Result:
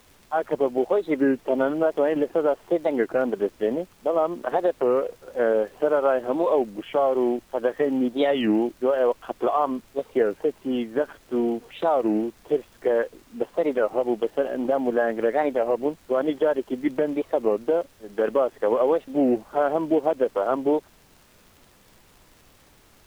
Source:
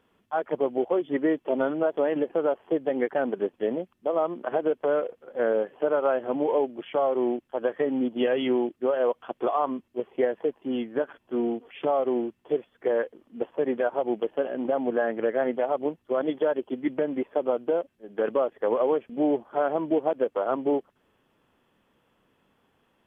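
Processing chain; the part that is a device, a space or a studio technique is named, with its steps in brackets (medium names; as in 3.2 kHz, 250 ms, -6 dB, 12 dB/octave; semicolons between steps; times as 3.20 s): warped LP (warped record 33 1/3 rpm, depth 250 cents; crackle; pink noise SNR 32 dB); trim +3 dB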